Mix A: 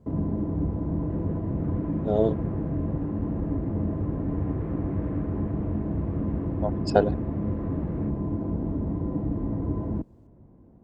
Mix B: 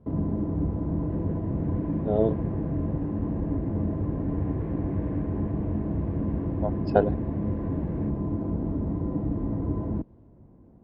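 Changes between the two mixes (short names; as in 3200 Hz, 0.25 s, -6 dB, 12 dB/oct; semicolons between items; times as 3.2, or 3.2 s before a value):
speech: add air absorption 310 m; second sound: add Butterworth band-stop 1300 Hz, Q 4.7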